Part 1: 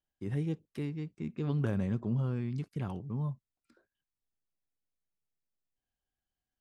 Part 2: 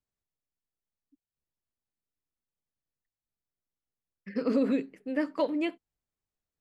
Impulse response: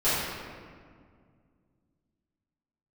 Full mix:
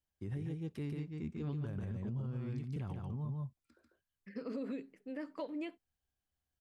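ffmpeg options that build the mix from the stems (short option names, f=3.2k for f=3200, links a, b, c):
-filter_complex "[0:a]equalizer=f=76:t=o:w=0.89:g=10.5,volume=-3dB,asplit=2[a][b];[b]volume=-3.5dB[c];[1:a]volume=-9.5dB[d];[c]aecho=0:1:144:1[e];[a][d][e]amix=inputs=3:normalize=0,alimiter=level_in=8.5dB:limit=-24dB:level=0:latency=1:release=150,volume=-8.5dB"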